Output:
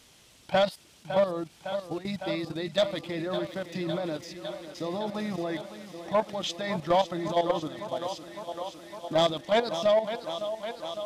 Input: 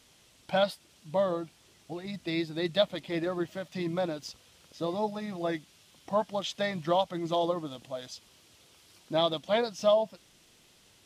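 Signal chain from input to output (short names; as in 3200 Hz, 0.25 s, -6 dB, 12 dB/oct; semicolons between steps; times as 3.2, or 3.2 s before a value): level quantiser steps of 13 dB; thinning echo 0.557 s, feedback 80%, high-pass 150 Hz, level -12 dB; soft clip -23 dBFS, distortion -16 dB; gain +7.5 dB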